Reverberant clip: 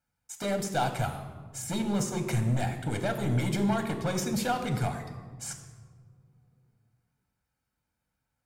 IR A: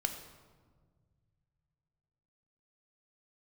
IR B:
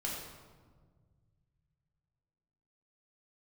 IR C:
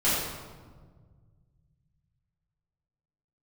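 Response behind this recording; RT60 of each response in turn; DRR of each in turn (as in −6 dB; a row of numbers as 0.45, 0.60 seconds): A; 1.6, 1.6, 1.6 seconds; 5.5, −4.0, −12.0 decibels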